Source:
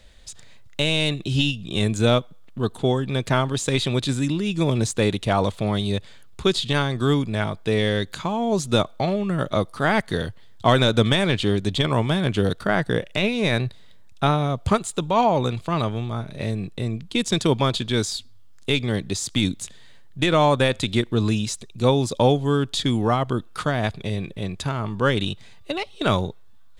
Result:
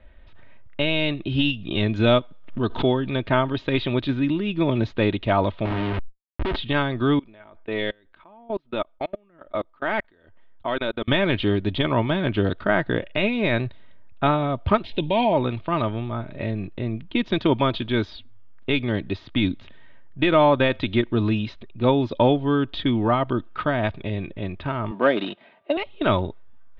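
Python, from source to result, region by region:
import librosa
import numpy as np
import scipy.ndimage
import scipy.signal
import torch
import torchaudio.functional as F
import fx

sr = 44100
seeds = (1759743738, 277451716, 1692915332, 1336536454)

y = fx.chain(x, sr, fx.high_shelf(hz=6300.0, db=12.0),
    fx.pre_swell(db_per_s=110.0), at=(1.45, 3.17))
y = fx.chain(y, sr, fx.schmitt(flips_db=-29.5),
    fx.sustainer(db_per_s=45.0), at=(5.65, 6.56))
y = fx.chain(y, sr, fx.peak_eq(hz=120.0, db=-12.5, octaves=1.5),
    fx.level_steps(step_db=24),
    fx.transient(attack_db=-2, sustain_db=-10), at=(7.19, 11.08))
y = fx.chain(y, sr, fx.high_shelf(hz=2300.0, db=8.0),
    fx.fixed_phaser(hz=3000.0, stages=4),
    fx.env_flatten(amount_pct=50), at=(14.84, 15.33))
y = fx.chain(y, sr, fx.cvsd(bps=64000),
    fx.highpass(hz=200.0, slope=24),
    fx.peak_eq(hz=670.0, db=9.5, octaves=0.51), at=(24.91, 25.77))
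y = scipy.signal.sosfilt(scipy.signal.cheby2(4, 50, 7700.0, 'lowpass', fs=sr, output='sos'), y)
y = fx.env_lowpass(y, sr, base_hz=2000.0, full_db=-16.0)
y = y + 0.4 * np.pad(y, (int(3.2 * sr / 1000.0), 0))[:len(y)]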